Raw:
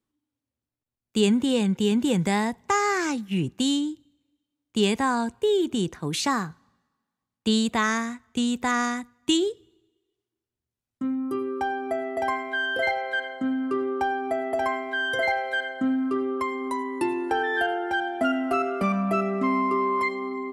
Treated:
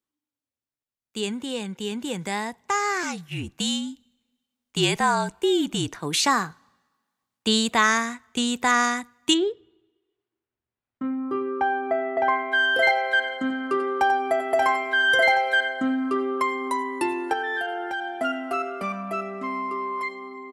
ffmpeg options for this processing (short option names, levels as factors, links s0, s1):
-filter_complex "[0:a]asettb=1/sr,asplit=3[s0][s1][s2];[s0]atrim=end=3.034[s3];[s1]atrim=start=3.03:end=5.99,asetpts=PTS-STARTPTS,afade=t=in:d=0.004:c=qsin,afade=t=out:st=2.956:d=0.004:c=qsin,afreqshift=-46[s4];[s2]atrim=start=5.986[s5];[s3][s4]acrossfade=d=0.004:c1=hsin:c2=qsin[s6];[s6][s5]acrossfade=d=0.004:c1=qsin:c2=hsin,asplit=3[s7][s8][s9];[s7]afade=t=out:st=9.33:d=0.02[s10];[s8]lowpass=2200,afade=t=in:st=9.33:d=0.02,afade=t=out:st=12.51:d=0.02[s11];[s9]afade=t=in:st=12.51:d=0.02[s12];[s10][s11][s12]amix=inputs=3:normalize=0,asplit=3[s13][s14][s15];[s13]afade=t=out:st=13.27:d=0.02[s16];[s14]aecho=1:1:90:0.355,afade=t=in:st=13.27:d=0.02,afade=t=out:st=15.51:d=0.02[s17];[s15]afade=t=in:st=15.51:d=0.02[s18];[s16][s17][s18]amix=inputs=3:normalize=0,asettb=1/sr,asplit=3[s19][s20][s21];[s19]atrim=end=17.334[s22];[s20]atrim=start=17.33:end=18.16,asetpts=PTS-STARTPTS,afade=t=in:d=0.004:c=qsin,afade=t=out:st=0.826:d=0.004:c=qsin,acompressor=threshold=0.0562:ratio=6:attack=3.2:release=140:knee=1:detection=peak[s23];[s21]atrim=start=18.156[s24];[s22][s23]acrossfade=d=0.004:c1=hsin:c2=qsin[s25];[s25][s24]acrossfade=d=0.004:c1=qsin:c2=hsin,lowshelf=f=340:g=-11,dynaudnorm=f=220:g=31:m=3.35,volume=0.708"